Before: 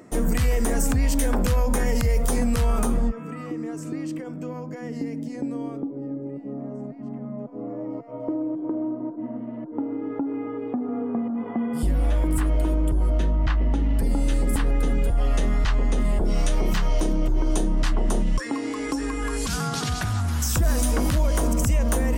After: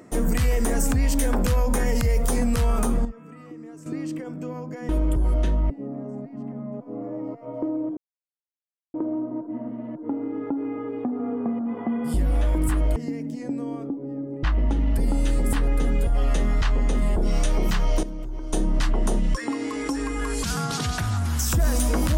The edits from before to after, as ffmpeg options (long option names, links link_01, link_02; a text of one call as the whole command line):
ffmpeg -i in.wav -filter_complex "[0:a]asplit=10[link_01][link_02][link_03][link_04][link_05][link_06][link_07][link_08][link_09][link_10];[link_01]atrim=end=3.052[link_11];[link_02]atrim=start=3.048:end=3.862,asetpts=PTS-STARTPTS,volume=-9.5dB[link_12];[link_03]atrim=start=3.858:end=4.892[link_13];[link_04]atrim=start=12.648:end=13.462[link_14];[link_05]atrim=start=6.358:end=8.63,asetpts=PTS-STARTPTS,afade=type=out:start_time=2.268:duration=0.004:curve=hsin,apad=pad_dur=0.97[link_15];[link_06]atrim=start=8.63:end=12.652,asetpts=PTS-STARTPTS,afade=type=in:duration=0.004:curve=hsin[link_16];[link_07]atrim=start=4.888:end=6.362[link_17];[link_08]atrim=start=13.458:end=17.062[link_18];[link_09]atrim=start=17.058:end=17.562,asetpts=PTS-STARTPTS,volume=-10.5dB[link_19];[link_10]atrim=start=17.558[link_20];[link_11][link_12]acrossfade=duration=0.004:curve1=hsin:curve2=hsin[link_21];[link_21][link_13]acrossfade=duration=0.004:curve1=hsin:curve2=hsin[link_22];[link_22][link_14]acrossfade=duration=0.004:curve1=hsin:curve2=hsin[link_23];[link_15][link_16]concat=n=2:v=0:a=1[link_24];[link_23][link_24]acrossfade=duration=0.004:curve1=hsin:curve2=hsin[link_25];[link_25][link_17]acrossfade=duration=0.004:curve1=hsin:curve2=hsin[link_26];[link_26][link_18]acrossfade=duration=0.004:curve1=hsin:curve2=hsin[link_27];[link_27][link_19]acrossfade=duration=0.004:curve1=hsin:curve2=hsin[link_28];[link_28][link_20]acrossfade=duration=0.004:curve1=hsin:curve2=hsin" out.wav